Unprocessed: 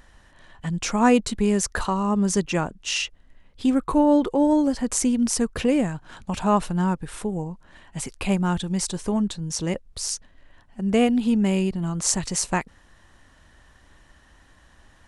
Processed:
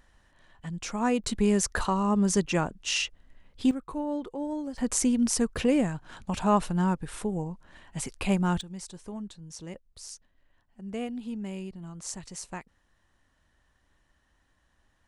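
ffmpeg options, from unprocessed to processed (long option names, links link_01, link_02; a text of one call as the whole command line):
ffmpeg -i in.wav -af "asetnsamples=nb_out_samples=441:pad=0,asendcmd='1.24 volume volume -2.5dB;3.71 volume volume -14dB;4.78 volume volume -3dB;8.61 volume volume -15dB',volume=-9dB" out.wav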